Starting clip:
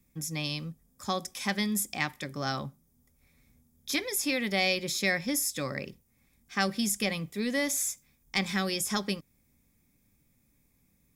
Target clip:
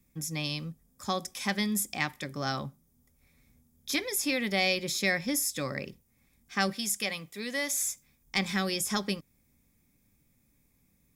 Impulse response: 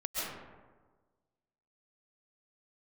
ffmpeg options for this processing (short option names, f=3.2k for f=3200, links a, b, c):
-filter_complex "[0:a]asettb=1/sr,asplit=3[a][b][c];[a]atrim=end=6.734[d];[b]atrim=start=6.73:end=7.81,asetpts=PTS-STARTPTS,afade=t=in:d=0.004:c=qsin,afade=t=out:st=1.076:d=0.004:c=qsin,lowshelf=f=420:g=-11[e];[c]atrim=start=7.806[f];[d][e]acrossfade=d=0.004:c1=hsin:c2=qsin[g];[g][f]acrossfade=d=0.004:c1=qsin:c2=hsin"